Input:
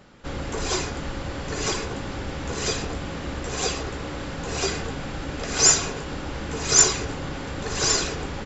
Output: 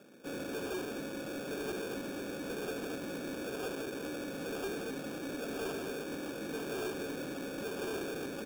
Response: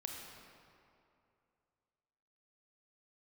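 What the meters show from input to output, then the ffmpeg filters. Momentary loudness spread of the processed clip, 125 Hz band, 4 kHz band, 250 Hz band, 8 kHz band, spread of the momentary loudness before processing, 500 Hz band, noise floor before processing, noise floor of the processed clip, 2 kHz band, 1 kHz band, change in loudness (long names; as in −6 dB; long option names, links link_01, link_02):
3 LU, −18.5 dB, −19.5 dB, −6.0 dB, can't be measured, 16 LU, −6.5 dB, −33 dBFS, −42 dBFS, −11.5 dB, −14.0 dB, −14.5 dB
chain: -af "asuperpass=centerf=380:order=4:qfactor=0.91,acrusher=samples=22:mix=1:aa=0.000001,asoftclip=type=tanh:threshold=-33dB,volume=-1dB"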